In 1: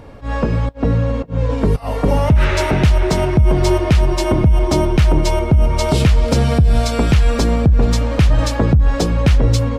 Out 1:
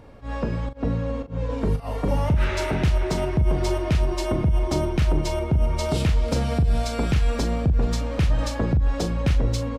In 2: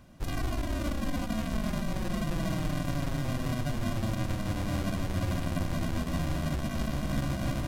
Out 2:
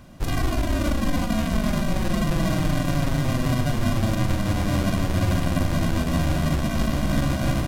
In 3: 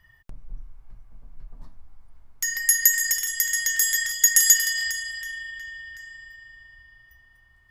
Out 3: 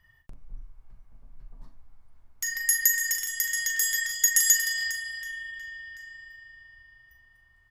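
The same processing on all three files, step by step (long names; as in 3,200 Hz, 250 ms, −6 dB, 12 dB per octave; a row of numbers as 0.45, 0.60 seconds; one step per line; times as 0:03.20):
double-tracking delay 40 ms −9.5 dB
loudness normalisation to −24 LKFS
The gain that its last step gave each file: −9.0, +8.0, −4.5 decibels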